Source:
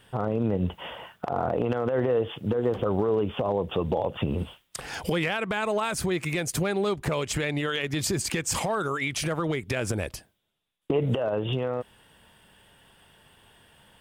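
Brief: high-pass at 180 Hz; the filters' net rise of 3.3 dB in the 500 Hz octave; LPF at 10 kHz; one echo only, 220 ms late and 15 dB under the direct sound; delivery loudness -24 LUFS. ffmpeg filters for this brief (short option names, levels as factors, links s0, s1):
-af "highpass=180,lowpass=10000,equalizer=f=500:t=o:g=4,aecho=1:1:220:0.178,volume=1.26"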